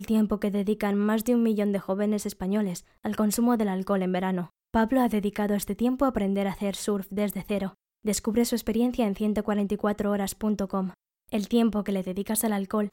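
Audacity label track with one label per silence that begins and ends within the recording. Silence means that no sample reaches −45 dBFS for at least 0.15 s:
2.810000	3.040000	silence
4.470000	4.740000	silence
7.720000	8.050000	silence
10.940000	11.290000	silence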